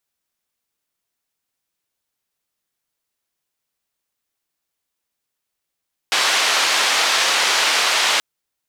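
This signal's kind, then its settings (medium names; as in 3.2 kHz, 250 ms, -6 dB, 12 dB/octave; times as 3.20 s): noise band 630–4500 Hz, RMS -17.5 dBFS 2.08 s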